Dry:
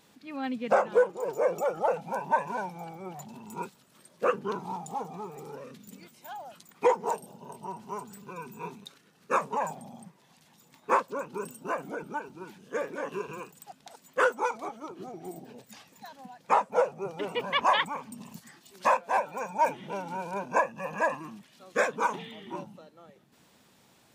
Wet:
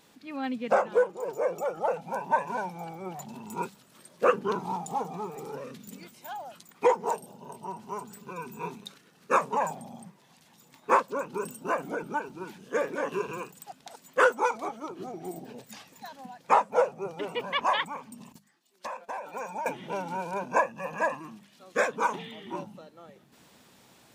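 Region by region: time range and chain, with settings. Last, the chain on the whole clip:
0:18.32–0:19.66: high-pass filter 220 Hz + noise gate −48 dBFS, range −14 dB + downward compressor 16 to 1, threshold −32 dBFS
whole clip: mains-hum notches 50/100/150/200 Hz; speech leveller within 4 dB 2 s

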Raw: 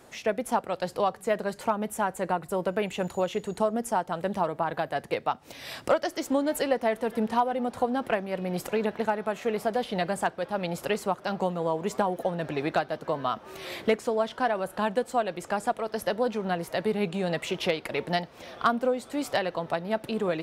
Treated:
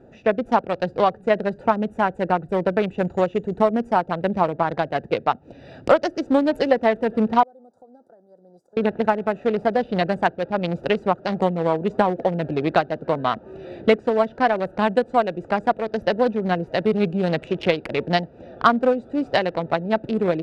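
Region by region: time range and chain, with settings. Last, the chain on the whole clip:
0:07.43–0:08.77: first difference + downward compressor 3 to 1, threshold −44 dBFS + Butterworth band-reject 2,500 Hz, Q 0.53
whole clip: adaptive Wiener filter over 41 samples; low-pass filter 5,800 Hz 12 dB per octave; level +8.5 dB

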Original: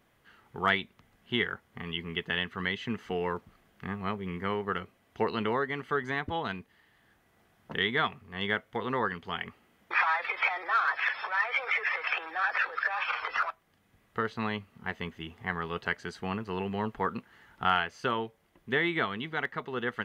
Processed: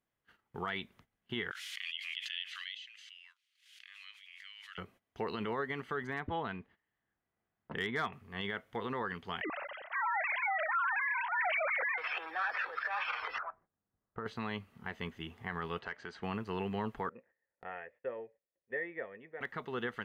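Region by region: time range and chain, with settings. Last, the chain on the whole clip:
0:01.51–0:04.78: inverse Chebyshev high-pass filter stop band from 620 Hz, stop band 70 dB + high-frequency loss of the air 68 metres + background raised ahead of every attack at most 21 dB per second
0:06.07–0:08.13: low-pass filter 2,700 Hz + hard clipping −19.5 dBFS
0:09.41–0:11.98: three sine waves on the formant tracks + low-shelf EQ 390 Hz +10.5 dB + level that may fall only so fast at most 32 dB per second
0:13.38–0:14.26: low-pass filter 1,500 Hz 24 dB per octave + downward compressor 5 to 1, threshold −33 dBFS
0:15.79–0:16.23: downward compressor 2 to 1, threshold −39 dBFS + mid-hump overdrive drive 9 dB, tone 2,300 Hz, clips at −21.5 dBFS + high-frequency loss of the air 64 metres
0:17.09–0:19.41: formant resonators in series e + parametric band 750 Hz +5 dB 2 octaves
whole clip: noise gate −56 dBFS, range −18 dB; brickwall limiter −23 dBFS; level −3 dB

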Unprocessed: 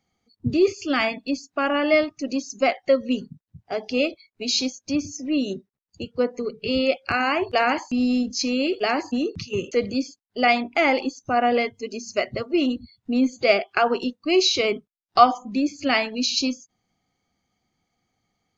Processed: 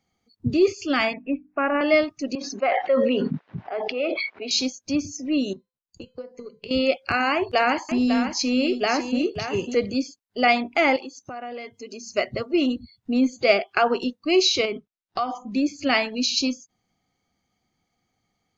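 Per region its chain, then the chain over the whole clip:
0:01.13–0:01.81: Butterworth low-pass 2,600 Hz 72 dB per octave + mains-hum notches 50/100/150/200/250/300 Hz
0:02.35–0:04.51: band-pass filter 510–2,300 Hz + high-frequency loss of the air 180 metres + level that may fall only so fast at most 20 dB per second
0:05.53–0:06.71: transient designer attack +12 dB, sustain 0 dB + downward compressor 16 to 1, threshold −23 dBFS + tuned comb filter 510 Hz, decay 0.36 s, mix 70%
0:07.34–0:09.75: upward compression, threshold −35 dBFS + single-tap delay 548 ms −8.5 dB
0:10.96–0:12.14: high-pass filter 190 Hz 6 dB per octave + downward compressor 4 to 1, threshold −34 dBFS
0:14.65–0:15.48: downward compressor 3 to 1, threshold −24 dBFS + high-frequency loss of the air 65 metres
whole clip: no processing

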